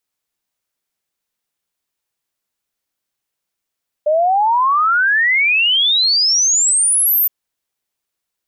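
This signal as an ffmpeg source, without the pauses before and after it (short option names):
-f lavfi -i "aevalsrc='0.282*clip(min(t,3.22-t)/0.01,0,1)*sin(2*PI*590*3.22/log(14000/590)*(exp(log(14000/590)*t/3.22)-1))':d=3.22:s=44100"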